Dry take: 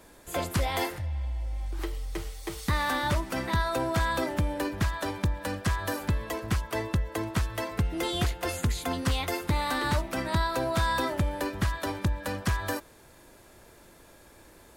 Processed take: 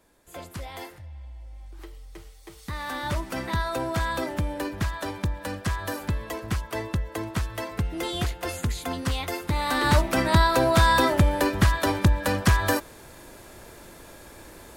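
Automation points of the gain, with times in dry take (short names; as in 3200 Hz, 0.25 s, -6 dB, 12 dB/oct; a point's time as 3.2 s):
2.55 s -9.5 dB
3.21 s 0 dB
9.48 s 0 dB
9.98 s +8 dB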